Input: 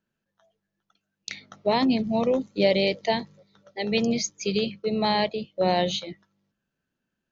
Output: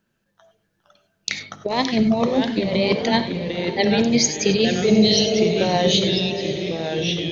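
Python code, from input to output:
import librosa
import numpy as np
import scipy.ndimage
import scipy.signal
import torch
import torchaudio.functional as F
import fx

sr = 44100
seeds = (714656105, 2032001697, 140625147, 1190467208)

y = fx.spec_repair(x, sr, seeds[0], start_s=4.96, length_s=0.63, low_hz=420.0, high_hz=2700.0, source='before')
y = fx.over_compress(y, sr, threshold_db=-25.0, ratio=-0.5)
y = fx.echo_pitch(y, sr, ms=413, semitones=-2, count=2, db_per_echo=-6.0)
y = fx.echo_diffused(y, sr, ms=548, feedback_pct=54, wet_db=-14.5)
y = fx.rev_gated(y, sr, seeds[1], gate_ms=120, shape='rising', drr_db=10.0)
y = y * librosa.db_to_amplitude(7.5)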